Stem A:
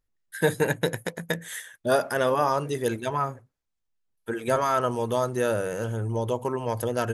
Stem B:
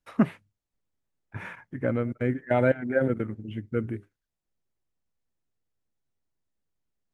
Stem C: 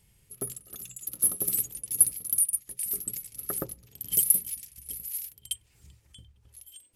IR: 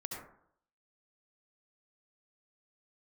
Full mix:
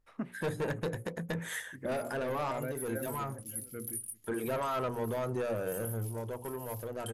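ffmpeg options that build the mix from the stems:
-filter_complex "[0:a]highshelf=f=2100:g=-10.5,acontrast=62,asoftclip=type=tanh:threshold=0.126,volume=0.841,afade=t=out:st=5.8:d=0.28:silence=0.237137[s0];[1:a]volume=0.224,asplit=3[s1][s2][s3];[s2]volume=0.106[s4];[2:a]flanger=delay=22.5:depth=3.1:speed=0.48,adelay=1550,volume=0.335[s5];[s3]apad=whole_len=314624[s6];[s0][s6]sidechaincompress=threshold=0.0126:ratio=8:attack=12:release=293[s7];[s7][s5]amix=inputs=2:normalize=0,alimiter=level_in=1.41:limit=0.0631:level=0:latency=1:release=103,volume=0.708,volume=1[s8];[s4]aecho=0:1:572:1[s9];[s1][s8][s9]amix=inputs=3:normalize=0,bandreject=f=60:t=h:w=6,bandreject=f=120:t=h:w=6,bandreject=f=180:t=h:w=6,bandreject=f=240:t=h:w=6,bandreject=f=300:t=h:w=6,bandreject=f=360:t=h:w=6,bandreject=f=420:t=h:w=6,bandreject=f=480:t=h:w=6,bandreject=f=540:t=h:w=6,alimiter=level_in=1.26:limit=0.0631:level=0:latency=1:release=376,volume=0.794"

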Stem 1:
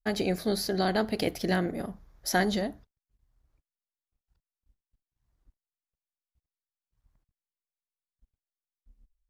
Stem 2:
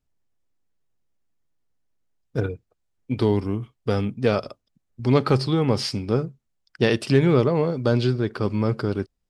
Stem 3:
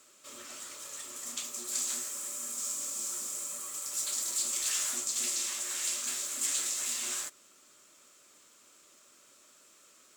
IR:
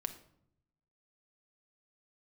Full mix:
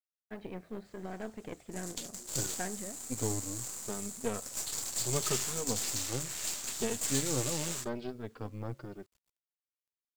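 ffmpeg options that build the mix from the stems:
-filter_complex "[0:a]lowpass=f=2600:w=0.5412,lowpass=f=2600:w=1.3066,adelay=250,volume=0.266[s0];[1:a]dynaudnorm=f=310:g=5:m=2.66,highshelf=f=4600:g=-10.5,asplit=2[s1][s2];[s2]adelay=2.8,afreqshift=0.77[s3];[s1][s3]amix=inputs=2:normalize=1,volume=0.158[s4];[2:a]afwtdn=0.00631,equalizer=f=4500:w=4.2:g=3,adelay=600,volume=0.794[s5];[s0][s4][s5]amix=inputs=3:normalize=0,highpass=f=61:p=1,acrusher=bits=10:mix=0:aa=0.000001,aeval=exprs='0.133*(cos(1*acos(clip(val(0)/0.133,-1,1)))-cos(1*PI/2))+0.00668*(cos(7*acos(clip(val(0)/0.133,-1,1)))-cos(7*PI/2))+0.0106*(cos(8*acos(clip(val(0)/0.133,-1,1)))-cos(8*PI/2))':c=same"

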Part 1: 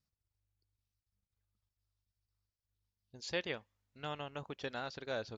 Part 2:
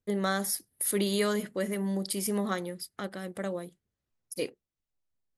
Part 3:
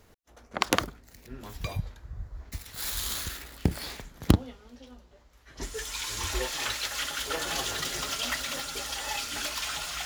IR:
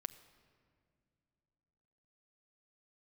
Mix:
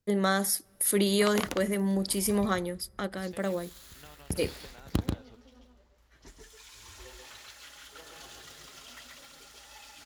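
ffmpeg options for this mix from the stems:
-filter_complex "[0:a]acompressor=threshold=0.00501:ratio=6,volume=0.631[s0];[1:a]volume=1.26,asplit=2[s1][s2];[s2]volume=0.168[s3];[2:a]adelay=650,volume=1.33,afade=t=out:st=2.17:d=0.68:silence=0.281838,afade=t=in:st=3.82:d=0.59:silence=0.251189,afade=t=out:st=6.09:d=0.25:silence=0.316228,asplit=2[s4][s5];[s5]volume=0.708[s6];[3:a]atrim=start_sample=2205[s7];[s3][s7]afir=irnorm=-1:irlink=0[s8];[s6]aecho=0:1:136:1[s9];[s0][s1][s4][s8][s9]amix=inputs=5:normalize=0"

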